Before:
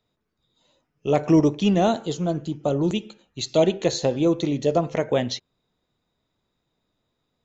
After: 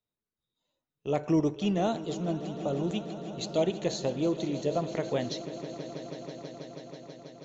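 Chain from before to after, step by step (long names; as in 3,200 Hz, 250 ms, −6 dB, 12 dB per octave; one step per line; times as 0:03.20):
noise gate −39 dBFS, range −9 dB
echo that builds up and dies away 162 ms, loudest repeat 5, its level −17 dB
level −8.5 dB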